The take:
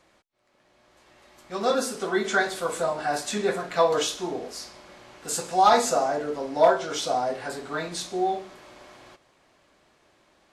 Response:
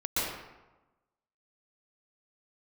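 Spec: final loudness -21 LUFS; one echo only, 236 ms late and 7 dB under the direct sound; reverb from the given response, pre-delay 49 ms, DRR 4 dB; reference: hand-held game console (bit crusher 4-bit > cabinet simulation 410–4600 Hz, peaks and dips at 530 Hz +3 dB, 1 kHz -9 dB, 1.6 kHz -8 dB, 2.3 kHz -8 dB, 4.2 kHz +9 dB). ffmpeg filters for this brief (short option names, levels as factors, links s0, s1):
-filter_complex "[0:a]aecho=1:1:236:0.447,asplit=2[s0][s1];[1:a]atrim=start_sample=2205,adelay=49[s2];[s1][s2]afir=irnorm=-1:irlink=0,volume=0.224[s3];[s0][s3]amix=inputs=2:normalize=0,acrusher=bits=3:mix=0:aa=0.000001,highpass=410,equalizer=f=530:t=q:w=4:g=3,equalizer=f=1000:t=q:w=4:g=-9,equalizer=f=1600:t=q:w=4:g=-8,equalizer=f=2300:t=q:w=4:g=-8,equalizer=f=4200:t=q:w=4:g=9,lowpass=f=4600:w=0.5412,lowpass=f=4600:w=1.3066,volume=1.33"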